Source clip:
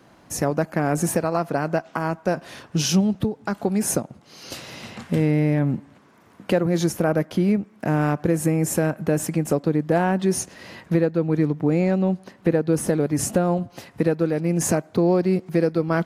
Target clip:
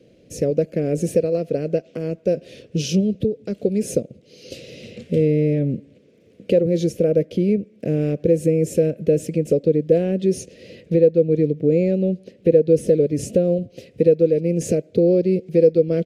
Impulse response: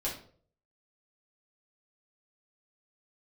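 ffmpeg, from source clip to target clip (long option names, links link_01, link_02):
-af "firequalizer=gain_entry='entry(320,0);entry(490,10);entry(870,-30);entry(2400,-2);entry(12000,-12)':delay=0.05:min_phase=1"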